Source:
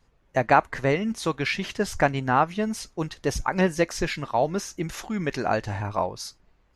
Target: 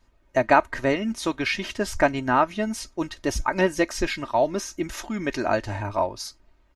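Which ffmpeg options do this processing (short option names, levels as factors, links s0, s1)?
-af "aecho=1:1:3.2:0.59"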